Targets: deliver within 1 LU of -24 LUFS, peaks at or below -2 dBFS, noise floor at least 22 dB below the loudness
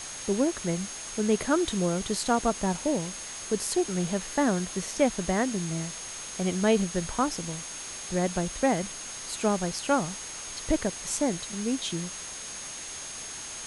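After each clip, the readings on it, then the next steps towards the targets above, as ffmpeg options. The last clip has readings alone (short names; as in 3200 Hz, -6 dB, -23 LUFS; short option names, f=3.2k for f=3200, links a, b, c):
steady tone 6500 Hz; tone level -40 dBFS; noise floor -39 dBFS; noise floor target -51 dBFS; loudness -29.0 LUFS; peak -10.0 dBFS; loudness target -24.0 LUFS
-> -af "bandreject=f=6.5k:w=30"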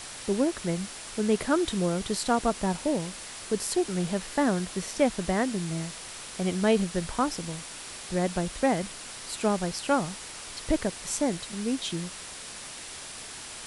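steady tone none; noise floor -42 dBFS; noise floor target -52 dBFS
-> -af "afftdn=nr=10:nf=-42"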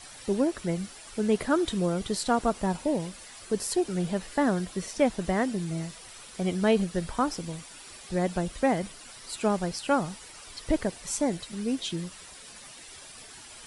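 noise floor -47 dBFS; noise floor target -51 dBFS
-> -af "afftdn=nr=6:nf=-47"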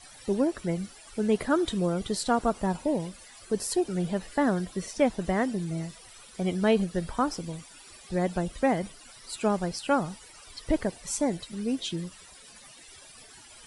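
noise floor -51 dBFS; loudness -29.0 LUFS; peak -10.5 dBFS; loudness target -24.0 LUFS
-> -af "volume=5dB"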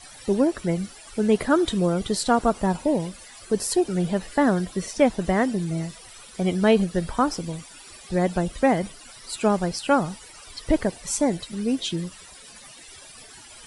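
loudness -24.0 LUFS; peak -5.5 dBFS; noise floor -46 dBFS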